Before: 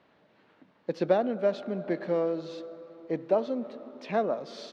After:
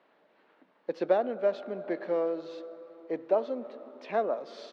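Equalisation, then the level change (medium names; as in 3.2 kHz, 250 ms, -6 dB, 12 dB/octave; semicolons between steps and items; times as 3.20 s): high-pass 340 Hz 12 dB/octave; treble shelf 4.1 kHz -10 dB; 0.0 dB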